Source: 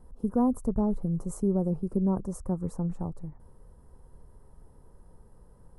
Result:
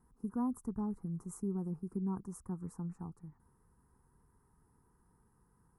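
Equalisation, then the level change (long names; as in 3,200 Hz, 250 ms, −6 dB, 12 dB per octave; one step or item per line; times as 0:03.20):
high-pass filter 100 Hz 6 dB per octave
low-shelf EQ 150 Hz −6.5 dB
phaser with its sweep stopped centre 1,400 Hz, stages 4
−5.0 dB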